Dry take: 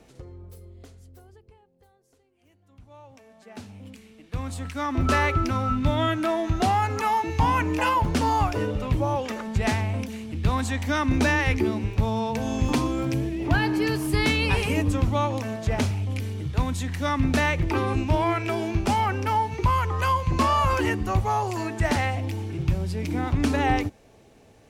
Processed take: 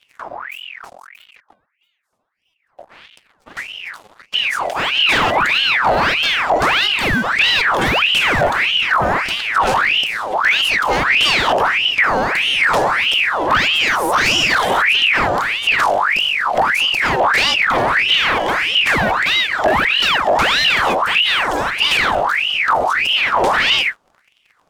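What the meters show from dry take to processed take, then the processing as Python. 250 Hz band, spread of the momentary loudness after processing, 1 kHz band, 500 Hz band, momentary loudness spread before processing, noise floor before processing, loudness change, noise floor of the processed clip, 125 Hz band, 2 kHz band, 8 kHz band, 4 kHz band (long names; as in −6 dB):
−2.5 dB, 5 LU, +9.0 dB, +8.0 dB, 7 LU, −57 dBFS, +10.5 dB, −63 dBFS, −7.0 dB, +16.5 dB, +8.0 dB, +21.0 dB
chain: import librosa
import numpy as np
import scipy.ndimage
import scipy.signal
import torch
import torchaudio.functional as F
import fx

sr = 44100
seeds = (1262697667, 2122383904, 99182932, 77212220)

y = fx.octave_divider(x, sr, octaves=1, level_db=3.0)
y = fx.leveller(y, sr, passes=3)
y = fx.ring_lfo(y, sr, carrier_hz=1800.0, swing_pct=65, hz=1.6)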